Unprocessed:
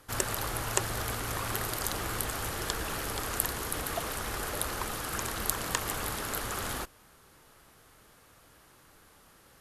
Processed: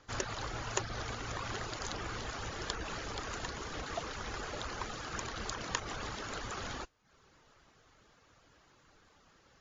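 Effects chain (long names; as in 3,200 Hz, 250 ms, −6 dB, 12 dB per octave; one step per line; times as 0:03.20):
reverb reduction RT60 0.59 s
level −3 dB
MP3 40 kbit/s 16,000 Hz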